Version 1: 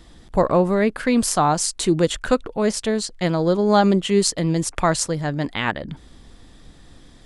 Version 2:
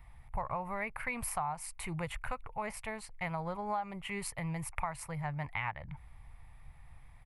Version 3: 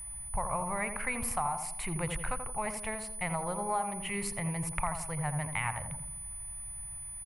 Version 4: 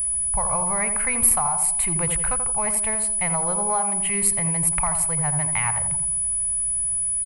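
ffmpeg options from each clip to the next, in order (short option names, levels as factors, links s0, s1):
-af "firequalizer=gain_entry='entry(130,0);entry(190,-16);entry(310,-25);entry(850,2);entry(1600,-9);entry(2200,4);entry(3300,-18);entry(6700,-22);entry(11000,-1)':delay=0.05:min_phase=1,acompressor=threshold=0.0501:ratio=10,volume=0.531"
-filter_complex "[0:a]asplit=2[s0][s1];[s1]adelay=84,lowpass=f=1000:p=1,volume=0.562,asplit=2[s2][s3];[s3]adelay=84,lowpass=f=1000:p=1,volume=0.55,asplit=2[s4][s5];[s5]adelay=84,lowpass=f=1000:p=1,volume=0.55,asplit=2[s6][s7];[s7]adelay=84,lowpass=f=1000:p=1,volume=0.55,asplit=2[s8][s9];[s9]adelay=84,lowpass=f=1000:p=1,volume=0.55,asplit=2[s10][s11];[s11]adelay=84,lowpass=f=1000:p=1,volume=0.55,asplit=2[s12][s13];[s13]adelay=84,lowpass=f=1000:p=1,volume=0.55[s14];[s0][s2][s4][s6][s8][s10][s12][s14]amix=inputs=8:normalize=0,aeval=exprs='val(0)+0.00708*sin(2*PI*9900*n/s)':c=same,volume=1.33"
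-af "aexciter=amount=5.5:drive=4.6:freq=8000,volume=2"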